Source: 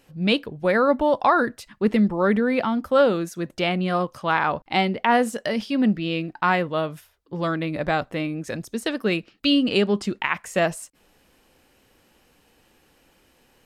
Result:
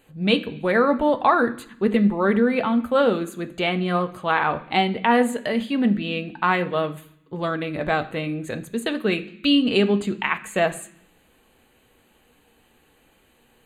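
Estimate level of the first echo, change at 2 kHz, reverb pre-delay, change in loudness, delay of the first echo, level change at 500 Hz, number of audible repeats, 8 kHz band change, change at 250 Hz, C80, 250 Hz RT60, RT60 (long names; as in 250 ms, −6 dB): no echo audible, +0.5 dB, 3 ms, +0.5 dB, no echo audible, +0.5 dB, no echo audible, −1.0 dB, +1.0 dB, 18.5 dB, 1.0 s, 0.65 s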